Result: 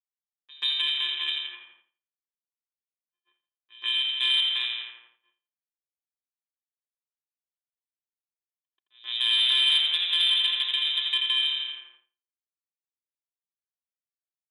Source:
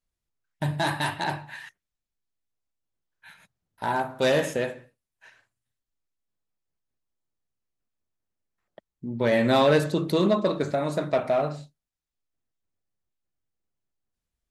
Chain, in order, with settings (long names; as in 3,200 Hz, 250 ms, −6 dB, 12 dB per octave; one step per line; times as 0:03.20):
samples sorted by size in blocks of 64 samples
on a send: feedback echo with a high-pass in the loop 84 ms, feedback 67%, high-pass 150 Hz, level −4 dB
on the sum: voice inversion scrambler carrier 3,800 Hz
low-pass that shuts in the quiet parts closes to 820 Hz, open at −21.5 dBFS
downward expander −53 dBFS
first difference
in parallel at +2 dB: downward compressor, threshold −38 dBFS, peak gain reduction 15.5 dB
on the sum: mains-hum notches 50/100 Hz
echo ahead of the sound 134 ms −23 dB
soft clipping −15 dBFS, distortion −24 dB
level +3 dB